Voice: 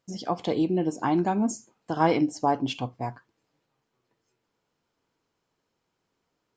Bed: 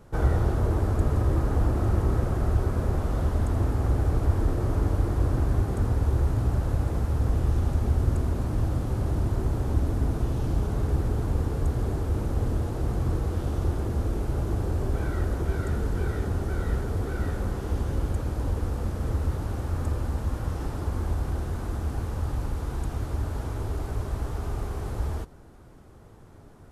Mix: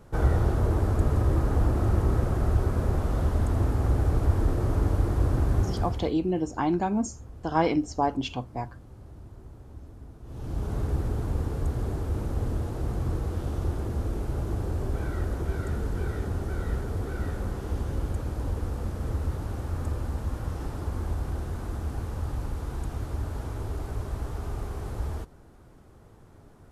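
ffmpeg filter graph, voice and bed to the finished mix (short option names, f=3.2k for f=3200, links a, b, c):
-filter_complex "[0:a]adelay=5550,volume=-1.5dB[a];[1:a]volume=17.5dB,afade=t=out:st=5.63:d=0.51:silence=0.1,afade=t=in:st=10.23:d=0.51:silence=0.133352[b];[a][b]amix=inputs=2:normalize=0"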